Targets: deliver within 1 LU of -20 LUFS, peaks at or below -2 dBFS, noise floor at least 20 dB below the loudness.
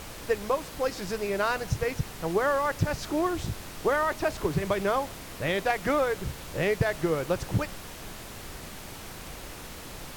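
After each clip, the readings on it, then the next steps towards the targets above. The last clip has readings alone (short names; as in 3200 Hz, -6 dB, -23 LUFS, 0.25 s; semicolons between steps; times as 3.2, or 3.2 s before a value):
noise floor -42 dBFS; noise floor target -49 dBFS; loudness -28.5 LUFS; peak -14.0 dBFS; loudness target -20.0 LUFS
-> noise print and reduce 7 dB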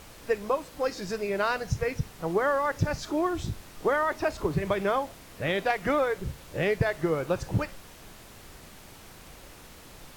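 noise floor -49 dBFS; loudness -29.0 LUFS; peak -14.0 dBFS; loudness target -20.0 LUFS
-> gain +9 dB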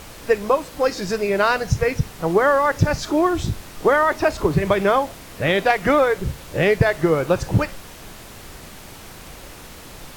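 loudness -20.0 LUFS; peak -5.0 dBFS; noise floor -40 dBFS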